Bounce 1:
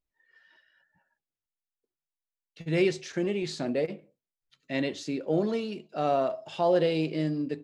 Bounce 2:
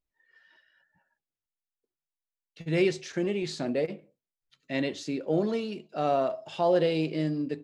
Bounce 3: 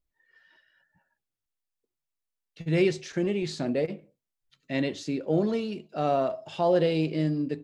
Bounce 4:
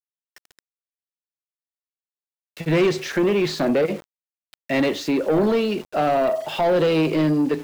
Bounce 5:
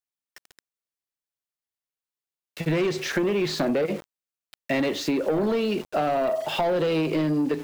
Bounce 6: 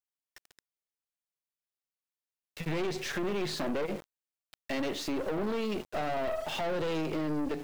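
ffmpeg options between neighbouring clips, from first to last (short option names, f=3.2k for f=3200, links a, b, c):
-af anull
-af "lowshelf=f=160:g=7.5"
-filter_complex "[0:a]acrossover=split=350|3000[a][b][c];[b]acompressor=threshold=-29dB:ratio=6[d];[a][d][c]amix=inputs=3:normalize=0,asplit=2[e][f];[f]highpass=f=720:p=1,volume=21dB,asoftclip=type=tanh:threshold=-14.5dB[g];[e][g]amix=inputs=2:normalize=0,lowpass=f=1.6k:p=1,volume=-6dB,aeval=exprs='val(0)*gte(abs(val(0)),0.00794)':c=same,volume=4.5dB"
-af "acompressor=threshold=-22dB:ratio=6,volume=1dB"
-af "aeval=exprs='(tanh(20*val(0)+0.6)-tanh(0.6))/20':c=same,volume=-3dB"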